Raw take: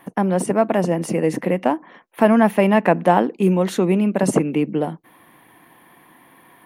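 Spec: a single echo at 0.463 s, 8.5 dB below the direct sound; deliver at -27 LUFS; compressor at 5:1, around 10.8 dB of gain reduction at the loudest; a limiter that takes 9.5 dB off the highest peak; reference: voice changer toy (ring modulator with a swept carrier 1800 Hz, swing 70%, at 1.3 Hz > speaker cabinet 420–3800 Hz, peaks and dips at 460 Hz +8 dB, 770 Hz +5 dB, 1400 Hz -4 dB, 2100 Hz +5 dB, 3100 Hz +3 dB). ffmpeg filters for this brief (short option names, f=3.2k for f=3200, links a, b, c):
-af "acompressor=threshold=-22dB:ratio=5,alimiter=limit=-17dB:level=0:latency=1,aecho=1:1:463:0.376,aeval=exprs='val(0)*sin(2*PI*1800*n/s+1800*0.7/1.3*sin(2*PI*1.3*n/s))':c=same,highpass=420,equalizer=f=460:t=q:w=4:g=8,equalizer=f=770:t=q:w=4:g=5,equalizer=f=1.4k:t=q:w=4:g=-4,equalizer=f=2.1k:t=q:w=4:g=5,equalizer=f=3.1k:t=q:w=4:g=3,lowpass=f=3.8k:w=0.5412,lowpass=f=3.8k:w=1.3066"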